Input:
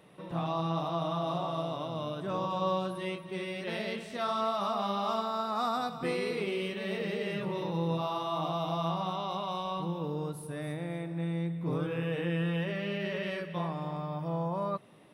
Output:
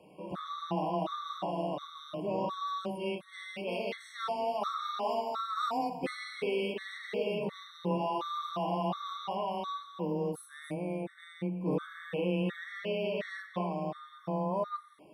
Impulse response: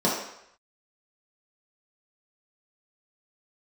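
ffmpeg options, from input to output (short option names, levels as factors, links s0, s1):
-filter_complex "[0:a]afreqshift=14,asplit=2[s0][s1];[1:a]atrim=start_sample=2205,asetrate=61740,aresample=44100[s2];[s1][s2]afir=irnorm=-1:irlink=0,volume=0.0794[s3];[s0][s3]amix=inputs=2:normalize=0,afftfilt=real='re*gt(sin(2*PI*1.4*pts/sr)*(1-2*mod(floor(b*sr/1024/1100),2)),0)':imag='im*gt(sin(2*PI*1.4*pts/sr)*(1-2*mod(floor(b*sr/1024/1100),2)),0)':win_size=1024:overlap=0.75"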